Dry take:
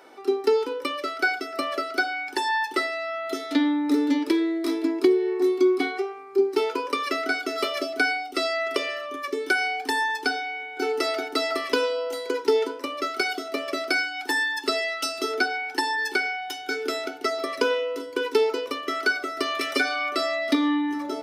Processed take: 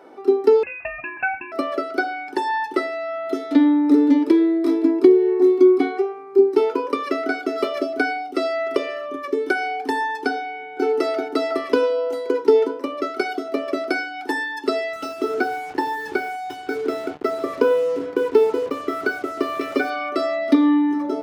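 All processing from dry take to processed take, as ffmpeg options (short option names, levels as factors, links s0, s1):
-filter_complex "[0:a]asettb=1/sr,asplit=3[s0][s1][s2];[s0]atrim=end=0.634[s3];[s1]atrim=start=0.63:end=1.52,asetpts=PTS-STARTPTS,afade=t=in:d=0.004:c=qsin,afade=t=out:st=0.886:d=0.004:c=qsin,lowpass=f=2600:t=q:w=0.5098,lowpass=f=2600:t=q:w=0.6013,lowpass=f=2600:t=q:w=0.9,lowpass=f=2600:t=q:w=2.563,afreqshift=-3000,equalizer=f=280:t=o:w=0.51:g=11[s4];[s2]atrim=start=1.516[s5];[s3][s4]acrossfade=d=0.004:c1=hsin:c2=qsin[s6];[s6][s5]acrossfade=d=0.004:c1=qsin:c2=hsin,asettb=1/sr,asplit=3[s7][s8][s9];[s7]atrim=end=14.934[s10];[s8]atrim=start=14.93:end=19.9,asetpts=PTS-STARTPTS,afade=t=in:d=0.004:c=qsin,afade=t=out:st=4.966:d=0.004:c=qsin,lowpass=f=3000:p=1,asplit=2[s11][s12];[s12]adelay=28,volume=0.224[s13];[s11][s13]amix=inputs=2:normalize=0,atrim=end_sample=219177,acrusher=bits=5:mix=0:aa=0.5[s14];[s9]atrim=start=19.896[s15];[s10][s14]acrossfade=d=0.004:c1=hsin:c2=qsin[s16];[s16][s15]acrossfade=d=0.004:c1=qsin:c2=hsin,highpass=79,tiltshelf=f=1400:g=8"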